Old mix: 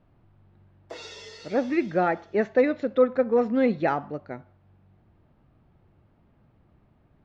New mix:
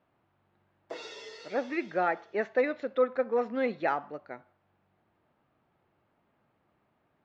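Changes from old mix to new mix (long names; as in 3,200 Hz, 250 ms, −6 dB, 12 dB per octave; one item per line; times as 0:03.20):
speech: add high-pass filter 850 Hz 6 dB per octave
master: add high-shelf EQ 4,400 Hz −8 dB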